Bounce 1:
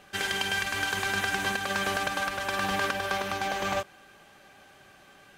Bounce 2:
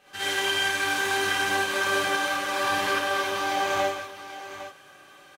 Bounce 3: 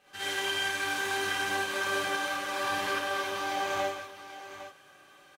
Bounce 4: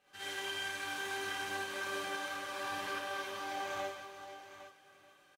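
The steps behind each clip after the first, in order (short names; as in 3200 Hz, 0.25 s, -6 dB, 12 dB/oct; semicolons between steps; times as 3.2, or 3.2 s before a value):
low shelf 230 Hz -9.5 dB; on a send: tapped delay 51/169/808 ms -6/-8.5/-11.5 dB; on the sum: non-linear reverb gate 0.1 s rising, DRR -8 dB; gain -6.5 dB
crackle 19/s -53 dBFS; gain -5.5 dB
echo 0.438 s -12.5 dB; gain -8.5 dB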